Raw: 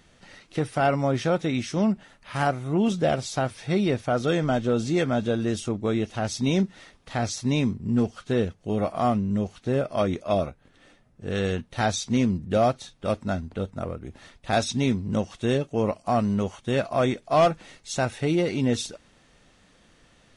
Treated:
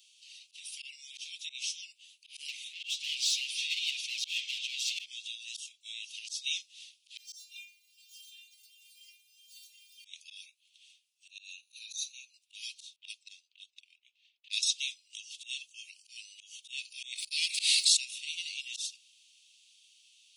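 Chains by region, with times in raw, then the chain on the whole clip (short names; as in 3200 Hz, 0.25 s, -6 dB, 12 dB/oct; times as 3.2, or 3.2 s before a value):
2.48–5.06 overdrive pedal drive 25 dB, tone 1600 Hz, clips at -12 dBFS + high shelf 8000 Hz -5 dB + comb 6.9 ms, depth 57%
7.17–10.05 zero-crossing step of -34 dBFS + phaser 1.6 Hz, delay 2.6 ms, feedback 42% + metallic resonator 180 Hz, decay 0.73 s, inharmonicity 0.008
11.3–12.34 compressor 8:1, threshold -32 dBFS + ripple EQ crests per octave 1.5, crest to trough 16 dB
12.96–14.63 low-pass opened by the level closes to 1300 Hz, open at -21.5 dBFS + transient shaper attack +10 dB, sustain -7 dB
17.12–17.97 ripple EQ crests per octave 0.94, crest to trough 9 dB + transient shaper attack +9 dB, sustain -8 dB + sustainer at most 24 dB/s
whole clip: steep high-pass 2600 Hz 72 dB/oct; auto swell 0.132 s; gain +3 dB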